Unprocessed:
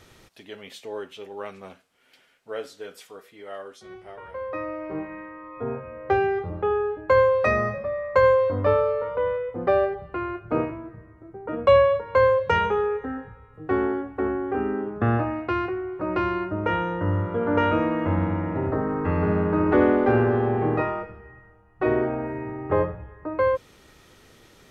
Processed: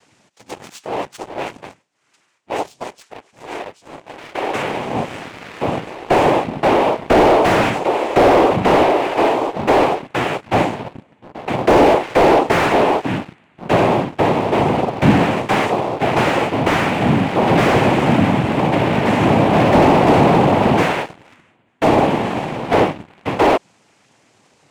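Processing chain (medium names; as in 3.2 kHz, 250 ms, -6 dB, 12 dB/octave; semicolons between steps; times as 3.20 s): noise-vocoded speech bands 4; waveshaping leveller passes 2; slew-rate limiter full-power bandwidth 180 Hz; trim +3 dB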